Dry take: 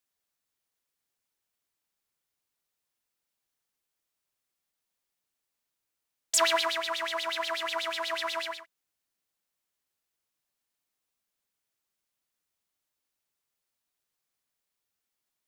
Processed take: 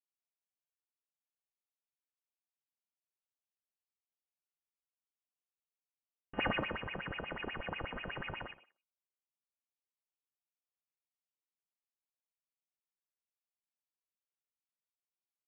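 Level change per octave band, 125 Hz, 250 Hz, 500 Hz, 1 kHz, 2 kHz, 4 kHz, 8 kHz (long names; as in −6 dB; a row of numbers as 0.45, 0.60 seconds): can't be measured, +3.5 dB, −10.5 dB, −11.0 dB, −7.0 dB, −15.5 dB, below −40 dB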